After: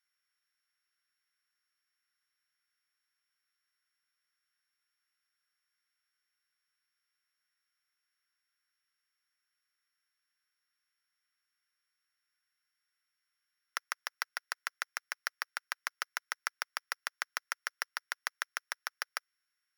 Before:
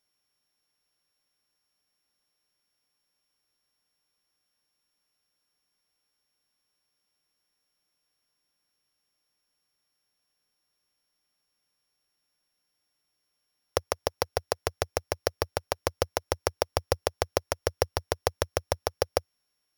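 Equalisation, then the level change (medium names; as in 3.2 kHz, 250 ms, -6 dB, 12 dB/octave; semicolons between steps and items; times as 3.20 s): ladder high-pass 1.3 kHz, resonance 60%; peaking EQ 2 kHz +5.5 dB 0.28 oct; +3.0 dB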